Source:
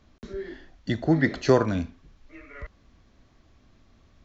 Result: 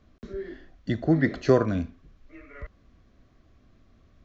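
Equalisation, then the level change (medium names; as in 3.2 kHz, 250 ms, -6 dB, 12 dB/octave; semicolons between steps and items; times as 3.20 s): treble shelf 2.3 kHz -7.5 dB; band-stop 880 Hz, Q 5.5; 0.0 dB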